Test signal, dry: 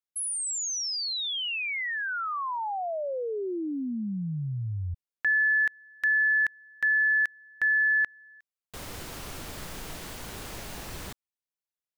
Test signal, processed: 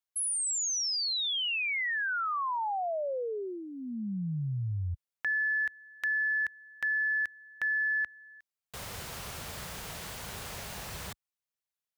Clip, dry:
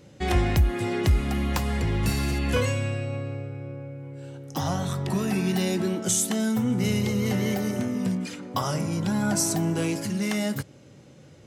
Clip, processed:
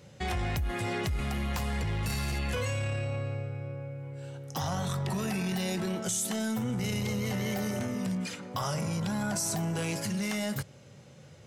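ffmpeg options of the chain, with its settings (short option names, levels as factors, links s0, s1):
-af "highpass=54,equalizer=f=300:t=o:w=0.65:g=-11,acompressor=threshold=0.0398:ratio=6:attack=1.1:release=23:knee=1:detection=peak"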